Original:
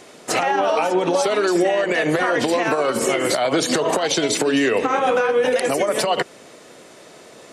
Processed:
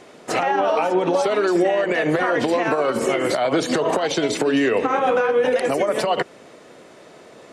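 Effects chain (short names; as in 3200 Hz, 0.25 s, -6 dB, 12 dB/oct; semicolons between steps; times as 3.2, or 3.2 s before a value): high shelf 3900 Hz -10 dB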